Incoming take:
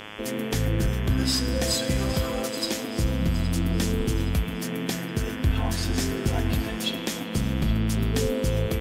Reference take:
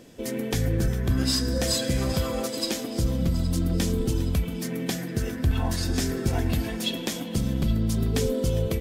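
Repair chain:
hum removal 105.3 Hz, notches 33

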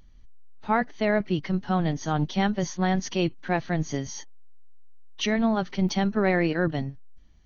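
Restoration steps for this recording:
repair the gap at 0:05.89, 1.8 ms

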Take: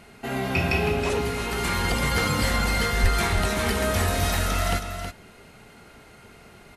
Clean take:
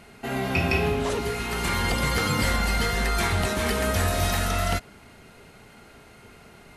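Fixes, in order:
0:03.02–0:03.14: high-pass filter 140 Hz 24 dB per octave
echo removal 321 ms −8 dB

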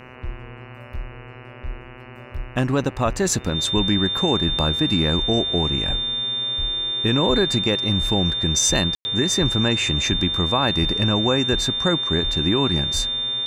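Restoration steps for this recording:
hum removal 126.8 Hz, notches 23
notch filter 3,600 Hz, Q 30
ambience match 0:08.95–0:09.05

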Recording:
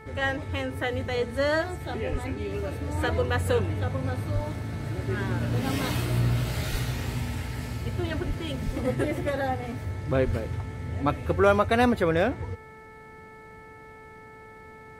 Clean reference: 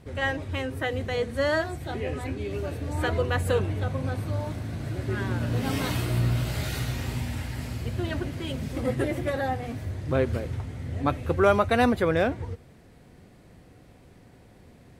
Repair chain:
hum removal 438.2 Hz, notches 5
high-pass at the plosives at 0:02.11/0:04.34/0:06.71/0:08.27/0:08.65/0:10.25

